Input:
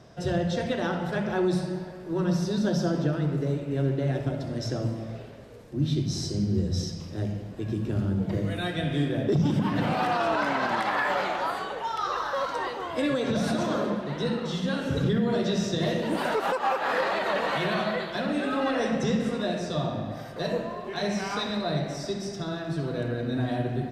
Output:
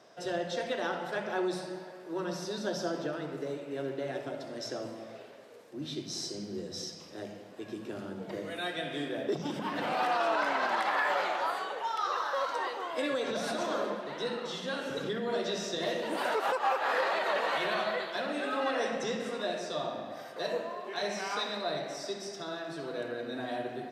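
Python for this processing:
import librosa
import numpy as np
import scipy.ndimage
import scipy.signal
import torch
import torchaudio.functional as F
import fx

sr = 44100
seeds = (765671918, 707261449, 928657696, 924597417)

y = scipy.signal.sosfilt(scipy.signal.butter(2, 400.0, 'highpass', fs=sr, output='sos'), x)
y = y * librosa.db_to_amplitude(-2.5)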